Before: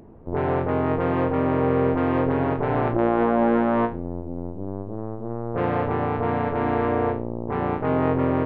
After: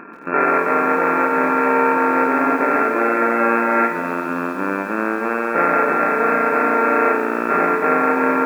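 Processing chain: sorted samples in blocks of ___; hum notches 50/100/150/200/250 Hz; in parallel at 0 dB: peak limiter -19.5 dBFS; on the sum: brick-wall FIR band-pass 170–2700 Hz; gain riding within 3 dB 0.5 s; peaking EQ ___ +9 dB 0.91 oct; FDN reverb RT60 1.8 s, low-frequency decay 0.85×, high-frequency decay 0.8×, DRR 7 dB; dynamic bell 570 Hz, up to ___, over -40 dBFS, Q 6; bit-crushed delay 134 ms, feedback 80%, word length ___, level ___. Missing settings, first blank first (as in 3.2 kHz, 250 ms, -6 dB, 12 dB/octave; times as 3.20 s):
32 samples, 1.6 kHz, +5 dB, 6-bit, -15 dB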